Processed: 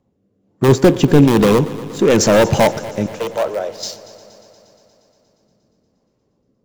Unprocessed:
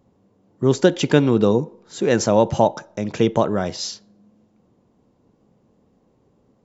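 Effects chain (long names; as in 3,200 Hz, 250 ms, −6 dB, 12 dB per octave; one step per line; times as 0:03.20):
loose part that buzzes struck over −17 dBFS, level −19 dBFS
rotating-speaker cabinet horn 1.1 Hz
leveller curve on the samples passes 2
in parallel at −9.5 dB: wrap-around overflow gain 7 dB
0:00.68–0:01.25: on the sum: tilt shelving filter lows +5 dB, about 840 Hz
0:01.99–0:02.42: power curve on the samples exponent 0.7
0:03.06–0:03.83: four-pole ladder high-pass 460 Hz, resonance 50%
on a send: echo machine with several playback heads 118 ms, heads first and second, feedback 69%, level −21 dB
on the sum: level −1 dB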